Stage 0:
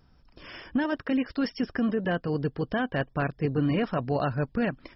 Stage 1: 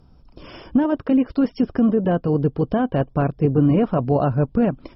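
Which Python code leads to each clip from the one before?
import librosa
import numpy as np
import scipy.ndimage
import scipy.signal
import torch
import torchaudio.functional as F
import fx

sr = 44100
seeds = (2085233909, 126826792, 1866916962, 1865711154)

y = fx.tilt_shelf(x, sr, db=4.0, hz=1400.0)
y = fx.env_lowpass_down(y, sr, base_hz=2400.0, full_db=-20.0)
y = fx.peak_eq(y, sr, hz=1800.0, db=-11.0, octaves=0.57)
y = y * librosa.db_to_amplitude(5.5)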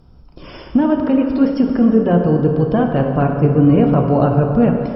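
y = fx.rev_plate(x, sr, seeds[0], rt60_s=2.4, hf_ratio=0.6, predelay_ms=0, drr_db=2.5)
y = y * librosa.db_to_amplitude(3.0)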